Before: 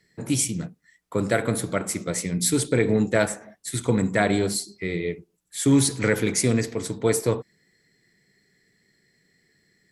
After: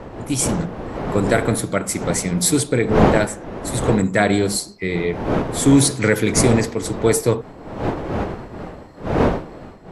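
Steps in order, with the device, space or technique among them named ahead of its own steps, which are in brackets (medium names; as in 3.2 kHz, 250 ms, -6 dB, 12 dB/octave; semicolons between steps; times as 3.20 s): smartphone video outdoors (wind noise 550 Hz -28 dBFS; level rider gain up to 7 dB; AAC 96 kbps 32 kHz)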